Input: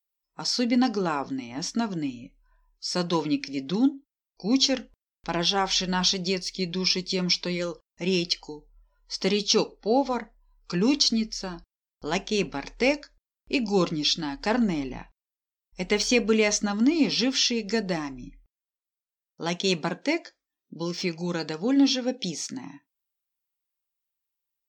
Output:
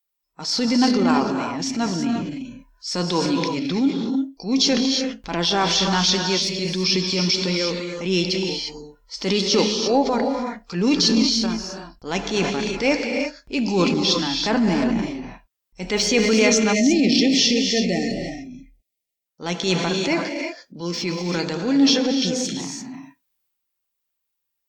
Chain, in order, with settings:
reverb whose tail is shaped and stops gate 370 ms rising, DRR 4.5 dB
transient designer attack −7 dB, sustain +4 dB
time-frequency box erased 0:16.75–0:19.26, 810–1,800 Hz
level +5 dB

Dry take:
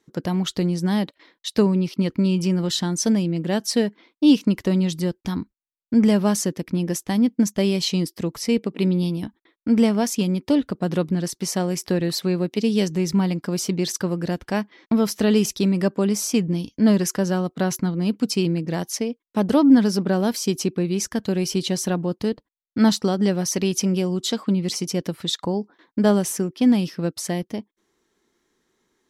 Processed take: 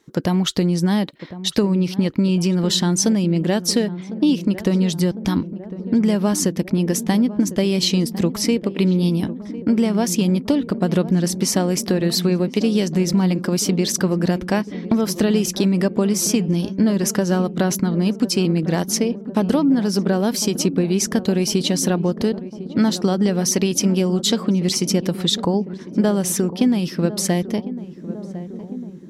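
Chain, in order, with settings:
downward compressor, threshold −22 dBFS, peak gain reduction 12.5 dB
feedback echo with a low-pass in the loop 1,053 ms, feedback 82%, low-pass 870 Hz, level −13.5 dB
level +7.5 dB

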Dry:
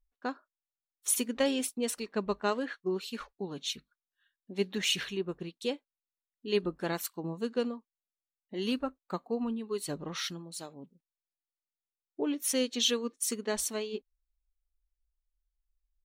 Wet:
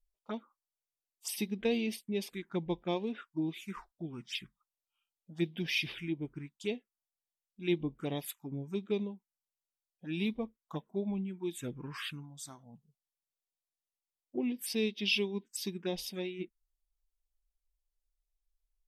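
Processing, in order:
speed change −15%
phaser swept by the level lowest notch 250 Hz, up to 1,400 Hz, full sweep at −29.5 dBFS
level −1.5 dB

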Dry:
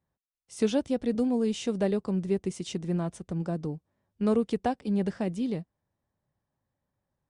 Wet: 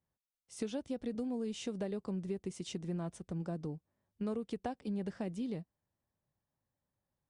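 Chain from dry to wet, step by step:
downward compressor, threshold −28 dBFS, peak gain reduction 9 dB
level −6 dB

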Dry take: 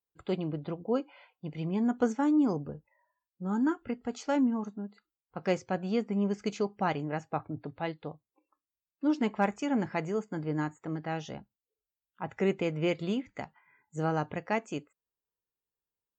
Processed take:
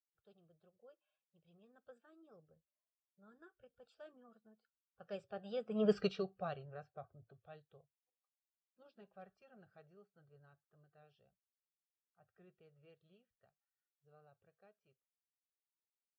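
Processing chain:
spectral magnitudes quantised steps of 15 dB
source passing by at 0:05.94, 23 m/s, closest 1.5 metres
phaser with its sweep stopped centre 1,400 Hz, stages 8
level +8.5 dB

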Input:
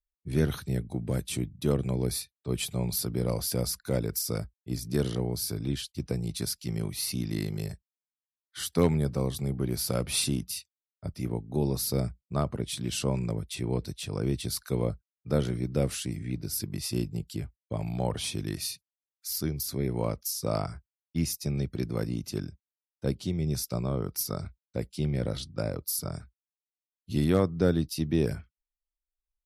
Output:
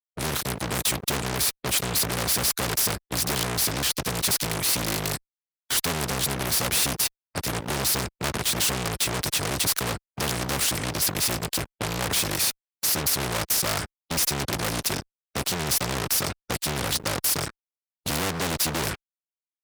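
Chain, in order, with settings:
tempo change 1.5×
automatic gain control gain up to 6 dB
fuzz pedal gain 32 dB, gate −41 dBFS
high-pass filter 77 Hz 6 dB per octave
every bin compressed towards the loudest bin 2 to 1
level −1.5 dB

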